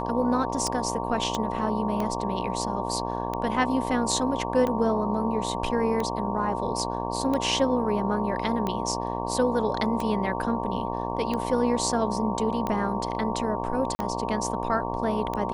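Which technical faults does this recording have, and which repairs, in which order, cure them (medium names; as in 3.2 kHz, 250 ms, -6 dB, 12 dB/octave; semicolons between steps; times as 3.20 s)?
buzz 60 Hz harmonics 19 -31 dBFS
tick 45 rpm -16 dBFS
whine 920 Hz -33 dBFS
1.35 s: pop -15 dBFS
13.95–13.99 s: dropout 40 ms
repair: de-click; band-stop 920 Hz, Q 30; de-hum 60 Hz, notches 19; interpolate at 13.95 s, 40 ms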